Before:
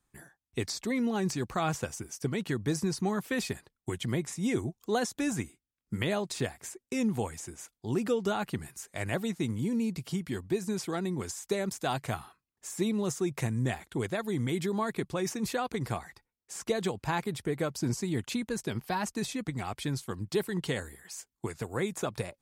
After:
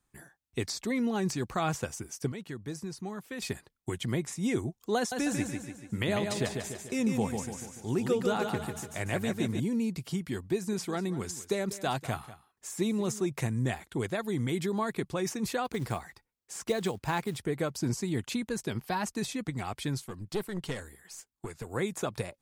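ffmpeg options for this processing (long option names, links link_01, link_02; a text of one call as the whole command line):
ffmpeg -i in.wav -filter_complex "[0:a]asettb=1/sr,asplit=3[link_01][link_02][link_03];[link_01]atrim=end=4.974[link_04];[link_02]atrim=start=4.97:end=9.6,asetpts=PTS-STARTPTS,afade=type=in:duration=0.004:curve=qsin,afade=type=out:start_time=4.626:duration=0.004:curve=qsin,aecho=1:1:146|292|438|584|730|876:0.562|0.281|0.141|0.0703|0.0351|0.0176,atrim=end_sample=204183[link_05];[link_03]atrim=start=9.596[link_06];[link_04][link_05]acrossfade=duration=0.004:curve1=hsin:curve2=qsin[link_07];[link_07][link_06]acrossfade=duration=0.004:curve1=qsin:curve2=hsin,asettb=1/sr,asplit=3[link_08][link_09][link_10];[link_08]atrim=end=10.534[link_11];[link_09]atrim=start=10.53:end=13.26,asetpts=PTS-STARTPTS,afade=type=in:duration=0.004:curve=qsin,afade=type=out:start_time=2.726:duration=0.004:curve=qsin,aecho=1:1:194:0.158,atrim=end_sample=120393[link_12];[link_10]atrim=start=13.256[link_13];[link_11][link_12]acrossfade=duration=0.004:curve1=hsin:curve2=qsin[link_14];[link_14][link_13]acrossfade=duration=0.004:curve1=qsin:curve2=hsin,asettb=1/sr,asplit=3[link_15][link_16][link_17];[link_15]atrim=end=15.654[link_18];[link_16]atrim=start=15.65:end=17.4,asetpts=PTS-STARTPTS,afade=type=in:duration=0.004:curve=qsin,afade=type=out:start_time=1.746:duration=0.004:curve=qsin,acrusher=bits=6:mode=log:mix=0:aa=0.000001[link_19];[link_17]atrim=start=17.396[link_20];[link_18][link_19]acrossfade=duration=0.004:curve1=hsin:curve2=qsin[link_21];[link_21][link_20]acrossfade=duration=0.004:curve1=qsin:curve2=hsin,asettb=1/sr,asplit=3[link_22][link_23][link_24];[link_22]atrim=end=20.084[link_25];[link_23]atrim=start=20.08:end=21.67,asetpts=PTS-STARTPTS,afade=type=in:duration=0.004:curve=qsin,afade=type=out:start_time=1.586:duration=0.004:curve=qsin,aeval=exprs='(tanh(15.8*val(0)+0.65)-tanh(0.65))/15.8':channel_layout=same[link_26];[link_24]atrim=start=21.666[link_27];[link_25][link_26]acrossfade=duration=0.004:curve1=hsin:curve2=qsin[link_28];[link_28][link_27]acrossfade=duration=0.004:curve1=qsin:curve2=hsin,asplit=3[link_29][link_30][link_31];[link_29]atrim=end=2.322[link_32];[link_30]atrim=start=2.318:end=3.422,asetpts=PTS-STARTPTS,volume=-8.5dB[link_33];[link_31]atrim=start=3.418[link_34];[link_32][link_33]acrossfade=duration=0.004:curve1=hsin:curve2=hsin[link_35];[link_35][link_34]acrossfade=duration=0.004:curve1=hsin:curve2=hsin" out.wav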